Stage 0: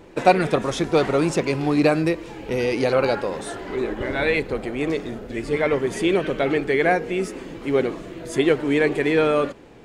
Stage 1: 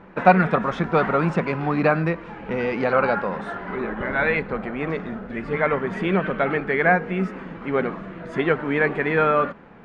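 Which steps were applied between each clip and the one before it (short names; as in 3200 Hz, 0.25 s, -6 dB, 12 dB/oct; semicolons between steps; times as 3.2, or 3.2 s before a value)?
EQ curve 130 Hz 0 dB, 190 Hz +12 dB, 310 Hz -3 dB, 1400 Hz +11 dB, 10000 Hz -24 dB; gain -3.5 dB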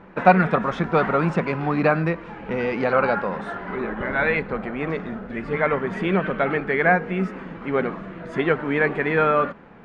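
nothing audible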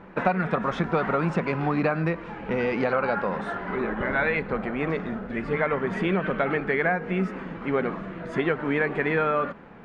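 compressor 6:1, threshold -20 dBFS, peak gain reduction 11.5 dB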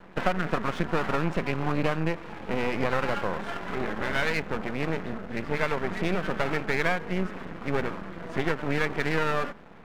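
half-wave rectifier; gain +1 dB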